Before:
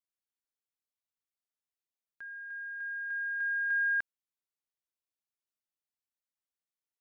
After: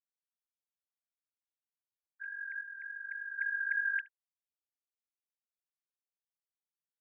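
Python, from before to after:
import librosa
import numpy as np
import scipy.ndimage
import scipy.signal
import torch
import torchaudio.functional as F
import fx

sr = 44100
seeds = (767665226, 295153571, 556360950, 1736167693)

p1 = fx.sine_speech(x, sr)
p2 = fx.peak_eq(p1, sr, hz=610.0, db=-10.5, octaves=3.0, at=(2.61, 3.39))
p3 = fx.rider(p2, sr, range_db=3, speed_s=0.5)
p4 = p2 + F.gain(torch.from_numpy(p3), 1.0).numpy()
p5 = fx.vibrato(p4, sr, rate_hz=3.5, depth_cents=13.0)
p6 = p5 + fx.echo_single(p5, sr, ms=71, db=-22.0, dry=0)
y = F.gain(torch.from_numpy(p6), -8.5).numpy()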